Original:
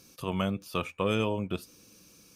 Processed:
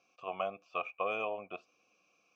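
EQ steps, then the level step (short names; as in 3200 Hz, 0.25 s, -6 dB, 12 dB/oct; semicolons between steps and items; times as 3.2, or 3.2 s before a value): dynamic EQ 640 Hz, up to +6 dB, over -41 dBFS, Q 0.7; vowel filter a; rippled Chebyshev low-pass 7900 Hz, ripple 6 dB; +7.0 dB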